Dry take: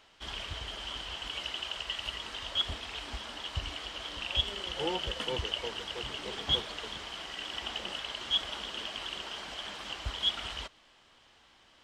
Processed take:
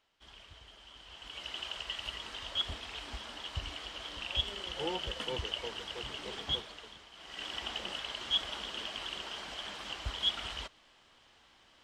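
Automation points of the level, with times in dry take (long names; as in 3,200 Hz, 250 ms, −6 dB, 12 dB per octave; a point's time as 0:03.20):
0:00.93 −15 dB
0:01.58 −3 dB
0:06.38 −3 dB
0:07.11 −14 dB
0:07.42 −1.5 dB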